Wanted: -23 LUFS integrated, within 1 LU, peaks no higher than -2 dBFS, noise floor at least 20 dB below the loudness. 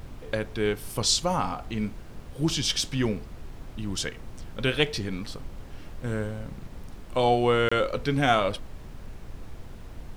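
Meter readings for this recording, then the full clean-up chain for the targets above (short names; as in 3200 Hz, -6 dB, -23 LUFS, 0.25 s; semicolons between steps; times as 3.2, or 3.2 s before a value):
dropouts 1; longest dropout 25 ms; noise floor -43 dBFS; noise floor target -47 dBFS; loudness -27.0 LUFS; peak -7.0 dBFS; loudness target -23.0 LUFS
-> interpolate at 7.69, 25 ms; noise print and reduce 6 dB; gain +4 dB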